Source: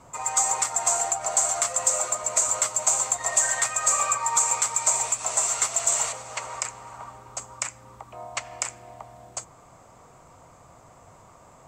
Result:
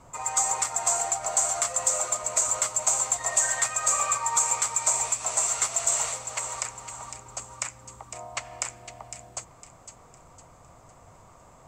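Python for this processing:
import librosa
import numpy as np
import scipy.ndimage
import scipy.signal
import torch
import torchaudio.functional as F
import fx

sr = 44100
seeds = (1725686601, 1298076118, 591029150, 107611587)

y = fx.low_shelf(x, sr, hz=63.0, db=9.0)
y = fx.echo_wet_highpass(y, sr, ms=507, feedback_pct=38, hz=2100.0, wet_db=-9.5)
y = F.gain(torch.from_numpy(y), -2.0).numpy()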